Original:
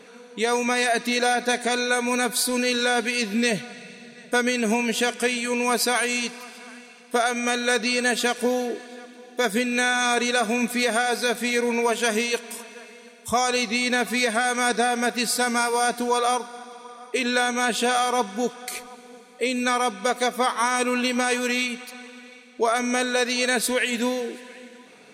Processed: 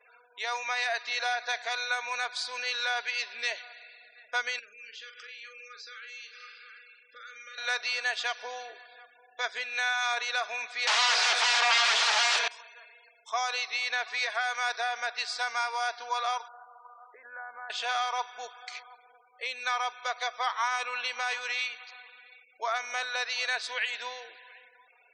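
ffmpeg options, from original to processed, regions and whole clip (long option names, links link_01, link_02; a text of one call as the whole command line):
ffmpeg -i in.wav -filter_complex "[0:a]asettb=1/sr,asplit=3[link_01][link_02][link_03];[link_01]atrim=end=4.594[link_04];[link_02]atrim=start=4.59:end=7.58,asetpts=PTS-STARTPTS,afade=type=in:duration=0.004:curve=qsin,afade=type=out:start_time=2.986:duration=0.004:curve=qsin,acompressor=threshold=-33dB:ratio=8:attack=3.2:release=140:knee=1:detection=peak,asuperstop=centerf=850:order=20:qfactor=1.5,asplit=2[link_05][link_06];[link_06]adelay=43,volume=-6.5dB[link_07];[link_05][link_07]amix=inputs=2:normalize=0,atrim=end_sample=131859[link_08];[link_03]atrim=start=7.576[link_09];[link_04][link_08]acrossfade=duration=0.004:curve1=hsin:curve2=qsin[link_10];[link_10][link_09]acrossfade=duration=0.004:curve1=qsin:curve2=hsin,asettb=1/sr,asplit=3[link_11][link_12][link_13];[link_11]atrim=end=10.874[link_14];[link_12]atrim=start=10.87:end=12.48,asetpts=PTS-STARTPTS,afade=type=in:duration=0.004:curve=qsin,afade=type=out:start_time=1.606:duration=0.004:curve=qsin,highpass=frequency=47:width=0.5412,highpass=frequency=47:width=1.3066,acrossover=split=3300|7600[link_15][link_16][link_17];[link_15]acompressor=threshold=-25dB:ratio=4[link_18];[link_16]acompressor=threshold=-32dB:ratio=4[link_19];[link_17]acompressor=threshold=-44dB:ratio=4[link_20];[link_18][link_19][link_20]amix=inputs=3:normalize=0,aeval=exprs='0.224*sin(PI/2*10*val(0)/0.224)':channel_layout=same[link_21];[link_13]atrim=start=12.476[link_22];[link_14][link_21]acrossfade=duration=0.004:curve1=hsin:curve2=qsin[link_23];[link_23][link_22]acrossfade=duration=0.004:curve1=qsin:curve2=hsin,asettb=1/sr,asplit=3[link_24][link_25][link_26];[link_24]atrim=end=16.484[link_27];[link_25]atrim=start=16.48:end=17.7,asetpts=PTS-STARTPTS,afade=type=in:duration=0.004:curve=qsin,afade=type=out:start_time=1.216:duration=0.004:curve=qsin,acompressor=threshold=-26dB:ratio=8:attack=3.2:release=140:knee=1:detection=peak,tremolo=f=86:d=0.4,asuperstop=centerf=4100:order=8:qfactor=0.58[link_28];[link_26]atrim=start=17.696[link_29];[link_27][link_28]acrossfade=duration=0.004:curve1=hsin:curve2=qsin[link_30];[link_30][link_29]acrossfade=duration=0.004:curve1=qsin:curve2=hsin,lowpass=frequency=5600:width=0.5412,lowpass=frequency=5600:width=1.3066,afftfilt=real='re*gte(hypot(re,im),0.00562)':imag='im*gte(hypot(re,im),0.00562)':win_size=1024:overlap=0.75,highpass=frequency=740:width=0.5412,highpass=frequency=740:width=1.3066,volume=-5.5dB" out.wav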